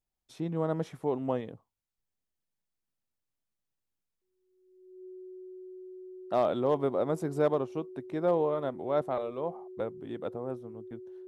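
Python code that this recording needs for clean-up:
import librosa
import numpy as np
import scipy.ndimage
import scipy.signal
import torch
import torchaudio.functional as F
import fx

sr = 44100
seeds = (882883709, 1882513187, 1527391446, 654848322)

y = fx.fix_declip(x, sr, threshold_db=-16.5)
y = fx.notch(y, sr, hz=370.0, q=30.0)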